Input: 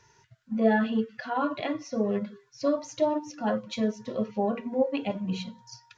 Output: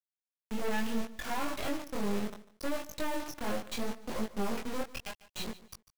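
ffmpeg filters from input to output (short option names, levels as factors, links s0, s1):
-filter_complex "[0:a]asettb=1/sr,asplit=3[s0][s1][s2];[s0]atrim=end=4.814[s3];[s1]atrim=start=4.81:end=5.4,asetpts=PTS-STARTPTS,afade=t=in:d=0.004:c=qsin,afade=t=out:st=0.586:d=0.004:c=qsin,highpass=f=960:w=0.5412,highpass=f=960:w=1.3066[s4];[s2]atrim=start=5.396[s5];[s3][s4]acrossfade=d=0.004:c1=hsin:c2=qsin[s6];[s6][s5]acrossfade=d=0.004:c1=qsin:c2=hsin,anlmdn=0.398,highshelf=f=2100:g=2.5,asplit=2[s7][s8];[s8]acompressor=threshold=0.0224:ratio=6,volume=1.12[s9];[s7][s9]amix=inputs=2:normalize=0,acrusher=bits=3:dc=4:mix=0:aa=0.000001,asoftclip=type=tanh:threshold=0.0708,flanger=delay=18:depth=6.7:speed=0.72,asplit=2[s10][s11];[s11]aecho=0:1:147|294:0.133|0.0293[s12];[s10][s12]amix=inputs=2:normalize=0,volume=1.12"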